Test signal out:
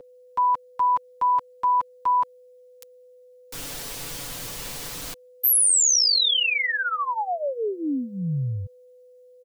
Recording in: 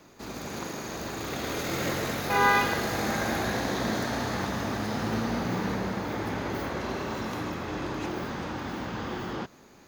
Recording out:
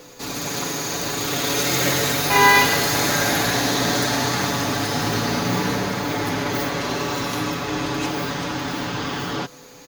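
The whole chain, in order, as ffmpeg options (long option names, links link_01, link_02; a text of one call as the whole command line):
ffmpeg -i in.wav -filter_complex "[0:a]aeval=exprs='val(0)+0.00708*sin(2*PI*500*n/s)':channel_layout=same,equalizer=frequency=1700:width_type=o:width=1.9:gain=-5,aecho=1:1:7:0.72,acrossover=split=380|5100[link_01][link_02][link_03];[link_01]acontrast=49[link_04];[link_04][link_02][link_03]amix=inputs=3:normalize=0,tiltshelf=frequency=680:gain=-8,volume=6.5dB" out.wav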